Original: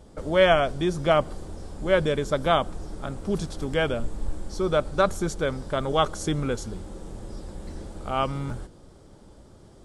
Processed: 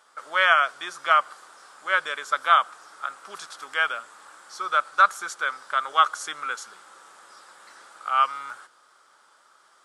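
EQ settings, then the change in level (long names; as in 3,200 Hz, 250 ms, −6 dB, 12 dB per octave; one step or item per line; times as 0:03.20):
high-pass with resonance 1,300 Hz, resonance Q 3.6
0.0 dB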